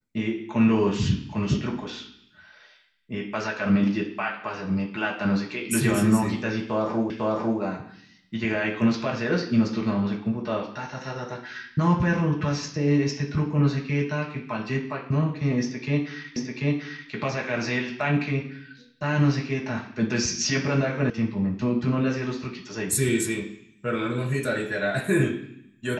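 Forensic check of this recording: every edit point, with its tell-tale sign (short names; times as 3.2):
7.1 repeat of the last 0.5 s
16.36 repeat of the last 0.74 s
21.1 sound cut off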